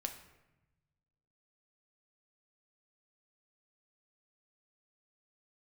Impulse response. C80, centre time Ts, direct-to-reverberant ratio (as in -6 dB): 12.0 dB, 16 ms, 4.5 dB